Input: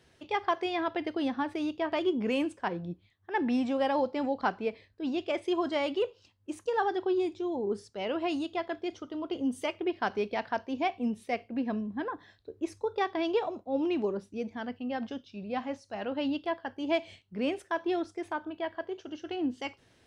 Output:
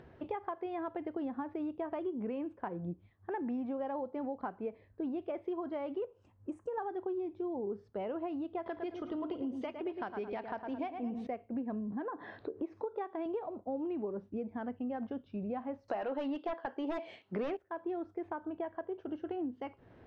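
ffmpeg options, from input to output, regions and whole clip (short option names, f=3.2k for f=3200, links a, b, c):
-filter_complex "[0:a]asettb=1/sr,asplit=3[a][b][c];[a]atrim=end=6.054[d];[b]atrim=start=6.05:end=6.78,asetpts=PTS-STARTPTS,afade=t=in:d=0.004:c=qsin,afade=t=out:st=0.726:d=0.004:c=qsin,highshelf=f=6k:t=q:w=3:g=13,acompressor=threshold=-42dB:ratio=1.5:attack=3.2:release=140:knee=1:detection=peak[e];[c]atrim=start=6.776[f];[d][e]acrossfade=d=0.004:c1=hsin:c2=qsin[g];[g][f]acrossfade=d=0.004:c1=qsin:c2=hsin,asettb=1/sr,asplit=3[h][i][j];[h]atrim=end=8.664[k];[i]atrim=start=8.66:end=11.27,asetpts=PTS-STARTPTS,afade=t=in:d=0.004:c=qsin,afade=t=out:st=2.606:d=0.004:c=qsin,equalizer=f=4.8k:w=0.54:g=13,acompressor=mode=upward:threshold=-30dB:ratio=2.5:attack=3.2:release=140:knee=2.83:detection=peak,asplit=2[l][m];[m]adelay=108,lowpass=f=2.7k:p=1,volume=-7.5dB,asplit=2[n][o];[o]adelay=108,lowpass=f=2.7k:p=1,volume=0.39,asplit=2[p][q];[q]adelay=108,lowpass=f=2.7k:p=1,volume=0.39,asplit=2[r][s];[s]adelay=108,lowpass=f=2.7k:p=1,volume=0.39[t];[l][n][p][r][t]amix=inputs=5:normalize=0,atrim=end_sample=115101[u];[j]atrim=start=11.266[v];[k][u]acrossfade=d=0.004:c1=hsin:c2=qsin[w];[w][v]acrossfade=d=0.004:c1=qsin:c2=hsin,asettb=1/sr,asplit=3[x][y][z];[x]atrim=end=11.924[aa];[y]atrim=start=11.92:end=13.26,asetpts=PTS-STARTPTS,afade=t=in:d=0.004:c=qsin,afade=t=out:st=1.336:d=0.004:c=qsin,highpass=240,lowpass=6.2k,acompressor=mode=upward:threshold=-32dB:ratio=2.5:attack=3.2:release=140:knee=2.83:detection=peak[ab];[z]atrim=start=13.256[ac];[aa][ab]acrossfade=d=0.004:c1=hsin:c2=qsin[ad];[ad][ac]acrossfade=d=0.004:c1=qsin:c2=hsin,asettb=1/sr,asplit=3[ae][af][ag];[ae]atrim=end=15.884[ah];[af]atrim=start=15.88:end=17.57,asetpts=PTS-STARTPTS,afade=t=in:d=0.004:c=qsin,afade=t=out:st=1.686:d=0.004:c=qsin,highpass=350,equalizer=f=7.5k:w=0.32:g=10,aeval=exprs='0.211*sin(PI/2*4.47*val(0)/0.211)':c=same[ai];[ag]atrim=start=17.566[aj];[ah][ai]acrossfade=d=0.004:c1=hsin:c2=qsin[ak];[ak][aj]acrossfade=d=0.004:c1=qsin:c2=hsin,acompressor=threshold=-42dB:ratio=6,lowpass=1.2k,acompressor=mode=upward:threshold=-58dB:ratio=2.5,volume=6.5dB"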